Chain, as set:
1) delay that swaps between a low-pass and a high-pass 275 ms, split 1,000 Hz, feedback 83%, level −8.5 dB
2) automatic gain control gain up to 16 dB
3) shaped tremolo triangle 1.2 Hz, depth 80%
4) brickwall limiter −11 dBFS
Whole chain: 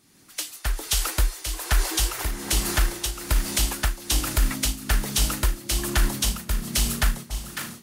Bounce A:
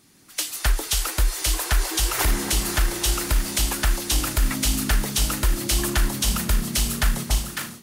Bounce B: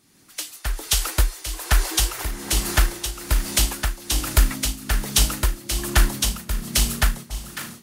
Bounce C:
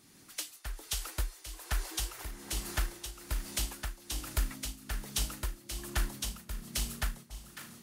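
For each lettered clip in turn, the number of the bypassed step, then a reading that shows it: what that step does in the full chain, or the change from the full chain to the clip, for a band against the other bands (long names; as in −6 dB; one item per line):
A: 3, change in momentary loudness spread −5 LU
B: 4, change in crest factor +5.5 dB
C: 2, change in crest factor +5.0 dB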